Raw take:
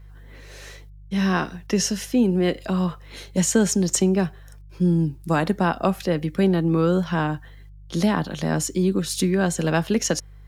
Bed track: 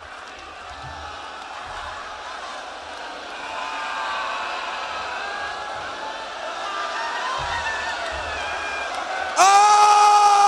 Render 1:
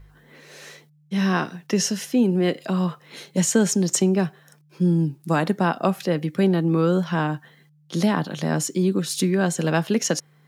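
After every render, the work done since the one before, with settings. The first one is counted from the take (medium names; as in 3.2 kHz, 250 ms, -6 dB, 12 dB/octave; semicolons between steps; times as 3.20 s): de-hum 50 Hz, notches 2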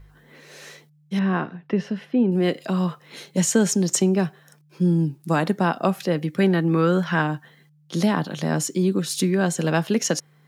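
1.19–2.32 s: distance through air 440 m; 6.40–7.22 s: peaking EQ 1.8 kHz +8 dB 1 oct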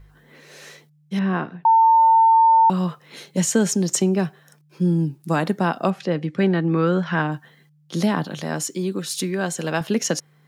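1.65–2.70 s: bleep 901 Hz -10.5 dBFS; 5.90–7.32 s: distance through air 86 m; 8.40–9.81 s: bass shelf 330 Hz -7 dB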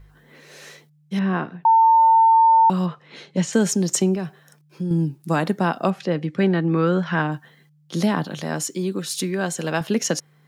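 2.86–3.53 s: low-pass 4.4 kHz; 4.15–4.91 s: compression 2.5:1, threshold -25 dBFS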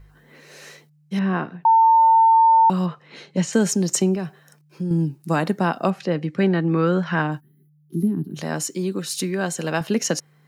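band-stop 3.4 kHz, Q 13; 7.40–8.37 s: time-frequency box 430–10000 Hz -29 dB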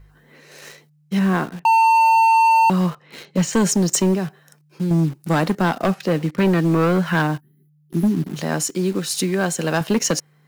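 in parallel at -5 dB: word length cut 6-bit, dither none; on the sum: hard clipper -12.5 dBFS, distortion -11 dB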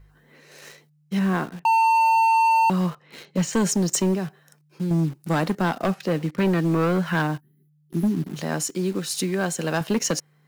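trim -4 dB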